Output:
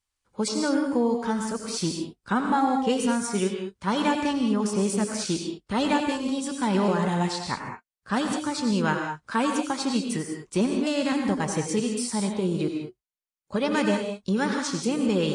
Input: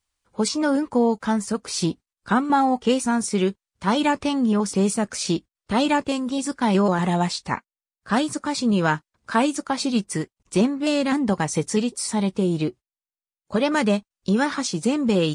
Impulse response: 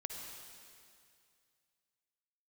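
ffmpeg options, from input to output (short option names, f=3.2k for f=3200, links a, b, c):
-filter_complex "[0:a]bandreject=f=680:w=13[a];[1:a]atrim=start_sample=2205,atrim=end_sample=6174,asetrate=28665,aresample=44100[b];[a][b]afir=irnorm=-1:irlink=0,volume=-3dB"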